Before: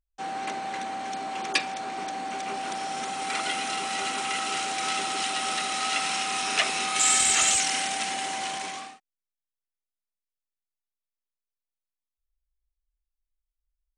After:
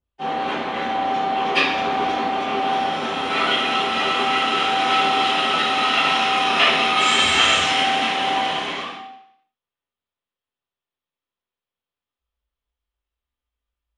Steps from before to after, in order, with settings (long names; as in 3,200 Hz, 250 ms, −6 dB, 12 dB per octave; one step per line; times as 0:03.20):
high shelf with overshoot 4,200 Hz −9.5 dB, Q 1.5
0:01.64–0:02.25: leveller curve on the samples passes 1
convolution reverb RT60 0.70 s, pre-delay 3 ms, DRR −19.5 dB
level −12 dB